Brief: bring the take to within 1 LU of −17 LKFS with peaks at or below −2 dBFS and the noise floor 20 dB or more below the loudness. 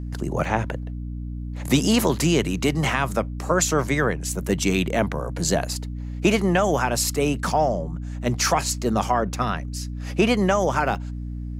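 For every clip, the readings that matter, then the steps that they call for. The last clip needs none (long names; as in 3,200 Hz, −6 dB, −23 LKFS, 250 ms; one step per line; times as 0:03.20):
number of dropouts 3; longest dropout 1.2 ms; mains hum 60 Hz; hum harmonics up to 300 Hz; level of the hum −28 dBFS; integrated loudness −23.0 LKFS; sample peak −7.0 dBFS; target loudness −17.0 LKFS
→ repair the gap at 0:00.45/0:09.34/0:10.95, 1.2 ms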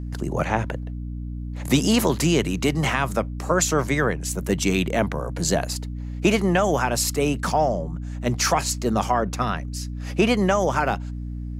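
number of dropouts 0; mains hum 60 Hz; hum harmonics up to 300 Hz; level of the hum −28 dBFS
→ mains-hum notches 60/120/180/240/300 Hz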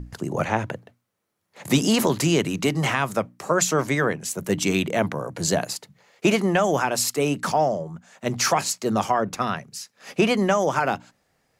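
mains hum none found; integrated loudness −23.0 LKFS; sample peak −7.0 dBFS; target loudness −17.0 LKFS
→ level +6 dB
brickwall limiter −2 dBFS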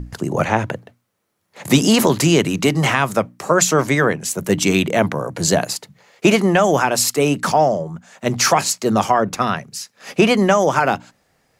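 integrated loudness −17.0 LKFS; sample peak −2.0 dBFS; background noise floor −66 dBFS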